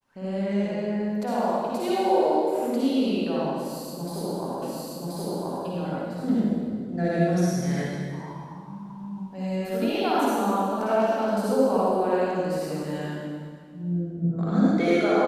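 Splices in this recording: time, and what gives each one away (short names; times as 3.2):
4.62 repeat of the last 1.03 s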